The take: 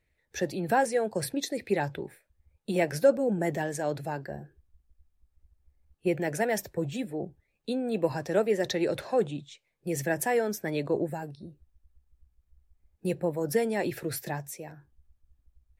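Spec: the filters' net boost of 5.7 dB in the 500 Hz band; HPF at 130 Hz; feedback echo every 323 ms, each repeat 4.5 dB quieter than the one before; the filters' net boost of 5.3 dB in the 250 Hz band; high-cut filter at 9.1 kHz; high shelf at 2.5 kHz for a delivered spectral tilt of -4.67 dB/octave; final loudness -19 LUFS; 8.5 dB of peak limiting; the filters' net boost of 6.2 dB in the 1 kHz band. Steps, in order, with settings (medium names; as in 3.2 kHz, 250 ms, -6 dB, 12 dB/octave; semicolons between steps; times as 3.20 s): high-pass 130 Hz; low-pass 9.1 kHz; peaking EQ 250 Hz +6 dB; peaking EQ 500 Hz +3.5 dB; peaking EQ 1 kHz +5.5 dB; treble shelf 2.5 kHz +8 dB; peak limiter -14 dBFS; feedback delay 323 ms, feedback 60%, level -4.5 dB; trim +6 dB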